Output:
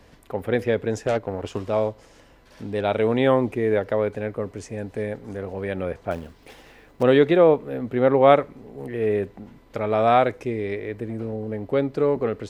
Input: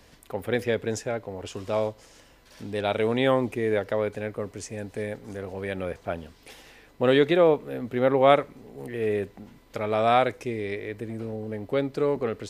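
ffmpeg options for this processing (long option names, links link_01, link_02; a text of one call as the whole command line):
ffmpeg -i in.wav -filter_complex "[0:a]asettb=1/sr,asplit=3[link_01][link_02][link_03];[link_01]atrim=end=1.044[link_04];[link_02]atrim=start=1.04:end=1.65,asetpts=PTS-STARTPTS,afade=type=in:duration=0.004:curve=qsin,afade=type=out:start_time=0.606:duration=0.004:curve=qsin,aeval=exprs='0.141*(cos(1*acos(clip(val(0)/0.141,-1,1)))-cos(1*PI/2))+0.0631*(cos(5*acos(clip(val(0)/0.141,-1,1)))-cos(5*PI/2))+0.0447*(cos(7*acos(clip(val(0)/0.141,-1,1)))-cos(7*PI/2))':channel_layout=same[link_05];[link_03]atrim=start=1.646[link_06];[link_04][link_05]acrossfade=duration=0.004:curve1=hsin:curve2=qsin[link_07];[link_07][link_06]acrossfade=duration=0.004:curve1=qsin:curve2=hsin,asettb=1/sr,asplit=3[link_08][link_09][link_10];[link_08]atrim=end=6.114[link_11];[link_09]atrim=start=6.11:end=7.03,asetpts=PTS-STARTPTS,afade=type=in:duration=0.004:curve=qsin,afade=type=out:start_time=0.916:duration=0.004:curve=qsin,acrusher=bits=3:mode=log:mix=0:aa=0.000001[link_12];[link_10]atrim=start=7.026[link_13];[link_11][link_12]acrossfade=duration=0.004:curve1=hsin:curve2=qsin[link_14];[link_14][link_13]acrossfade=duration=0.004:curve1=qsin:curve2=hsin,highshelf=frequency=2700:gain=-9.5,volume=4dB" out.wav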